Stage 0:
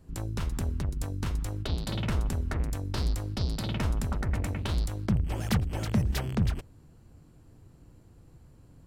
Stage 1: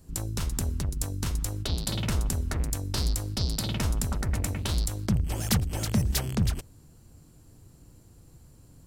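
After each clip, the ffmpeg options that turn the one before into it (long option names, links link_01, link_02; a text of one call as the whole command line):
ffmpeg -i in.wav -af "bass=frequency=250:gain=1,treble=frequency=4000:gain=12" out.wav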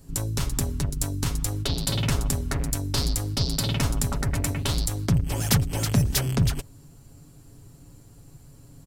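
ffmpeg -i in.wav -af "aecho=1:1:7.2:0.52,volume=3.5dB" out.wav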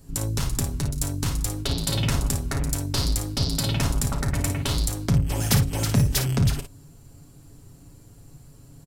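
ffmpeg -i in.wav -af "aecho=1:1:33|55:0.224|0.376" out.wav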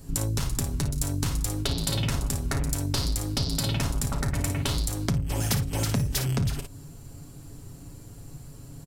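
ffmpeg -i in.wav -af "acompressor=threshold=-29dB:ratio=4,volume=4.5dB" out.wav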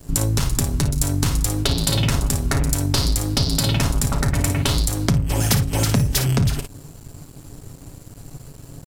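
ffmpeg -i in.wav -af "aeval=exprs='sgn(val(0))*max(abs(val(0))-0.00376,0)':channel_layout=same,volume=8dB" out.wav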